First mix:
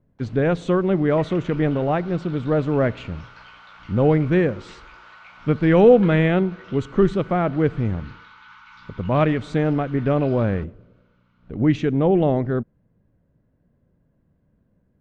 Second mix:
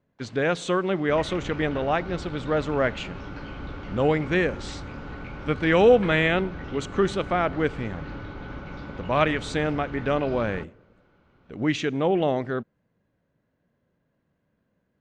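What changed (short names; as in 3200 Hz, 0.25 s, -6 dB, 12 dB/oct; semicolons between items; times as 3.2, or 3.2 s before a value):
speech: add tilt +3.5 dB/oct; second sound: remove rippled Chebyshev high-pass 890 Hz, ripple 3 dB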